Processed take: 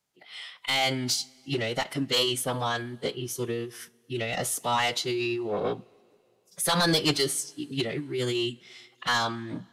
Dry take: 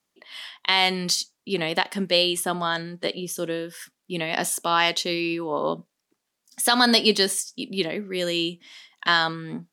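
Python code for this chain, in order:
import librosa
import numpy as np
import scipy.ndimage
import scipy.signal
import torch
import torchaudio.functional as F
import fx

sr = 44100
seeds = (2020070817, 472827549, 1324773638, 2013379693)

y = 10.0 ** (-14.5 / 20.0) * np.tanh(x / 10.0 ** (-14.5 / 20.0))
y = fx.pitch_keep_formants(y, sr, semitones=-6.0)
y = fx.rev_double_slope(y, sr, seeds[0], early_s=0.25, late_s=2.6, knee_db=-18, drr_db=18.0)
y = y * librosa.db_to_amplitude(-1.5)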